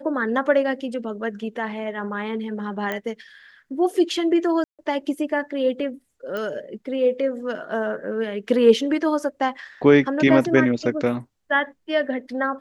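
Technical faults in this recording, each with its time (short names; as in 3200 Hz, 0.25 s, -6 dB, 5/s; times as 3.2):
2.92 pop -14 dBFS
4.64–4.79 gap 0.147 s
6.37 pop -17 dBFS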